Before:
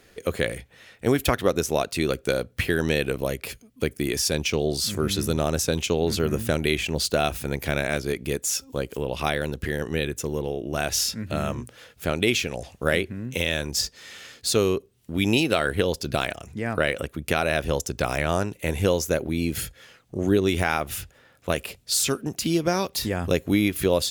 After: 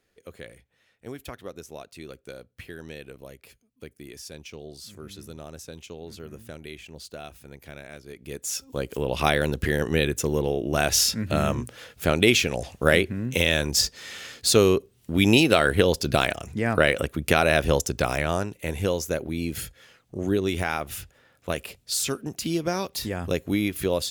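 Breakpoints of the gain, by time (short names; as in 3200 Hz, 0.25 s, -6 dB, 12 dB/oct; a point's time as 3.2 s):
8.06 s -17 dB
8.49 s -4.5 dB
9.25 s +3.5 dB
17.73 s +3.5 dB
18.54 s -3.5 dB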